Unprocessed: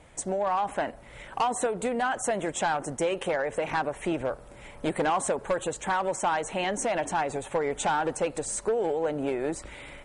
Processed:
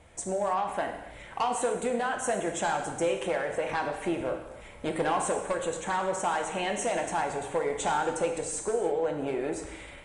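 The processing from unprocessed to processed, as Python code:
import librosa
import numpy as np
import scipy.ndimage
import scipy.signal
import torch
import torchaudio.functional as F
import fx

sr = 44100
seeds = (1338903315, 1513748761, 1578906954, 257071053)

y = fx.rev_gated(x, sr, seeds[0], gate_ms=350, shape='falling', drr_db=3.0)
y = F.gain(torch.from_numpy(y), -3.0).numpy()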